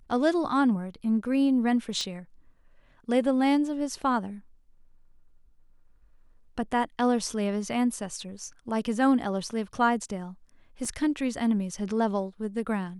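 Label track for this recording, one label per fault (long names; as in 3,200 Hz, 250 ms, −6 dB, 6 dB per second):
2.010000	2.010000	click −20 dBFS
10.850000	10.850000	drop-out 3.6 ms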